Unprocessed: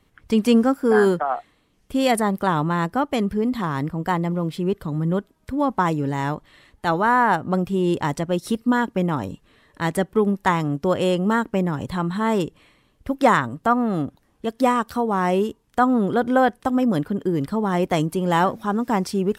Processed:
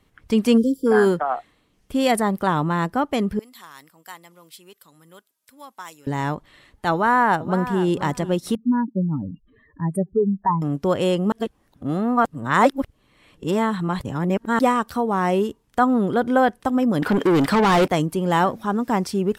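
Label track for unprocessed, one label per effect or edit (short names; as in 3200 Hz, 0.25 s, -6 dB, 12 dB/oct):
0.570000	0.870000	spectral delete 520–3000 Hz
3.390000	6.070000	differentiator
6.920000	7.860000	echo throw 0.48 s, feedback 15%, level -13 dB
8.550000	10.620000	spectral contrast raised exponent 3.2
11.320000	14.590000	reverse
17.020000	17.880000	overdrive pedal drive 27 dB, tone 4800 Hz, clips at -9.5 dBFS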